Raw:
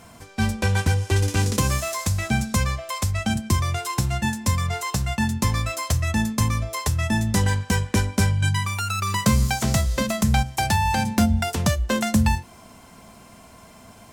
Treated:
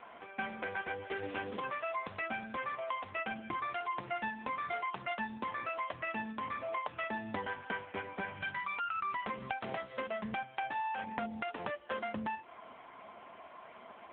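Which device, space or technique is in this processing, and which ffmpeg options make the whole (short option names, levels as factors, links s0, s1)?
voicemail: -af "highpass=440,lowpass=2700,acompressor=threshold=0.02:ratio=8,volume=1.19" -ar 8000 -c:a libopencore_amrnb -b:a 6700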